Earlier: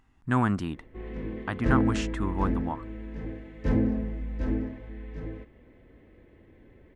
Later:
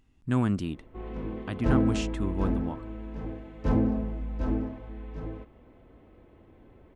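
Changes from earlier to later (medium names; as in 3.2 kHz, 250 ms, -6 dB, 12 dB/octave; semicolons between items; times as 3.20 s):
background: add high-order bell 1 kHz +14 dB 1.3 oct; master: add high-order bell 1.2 kHz -8.5 dB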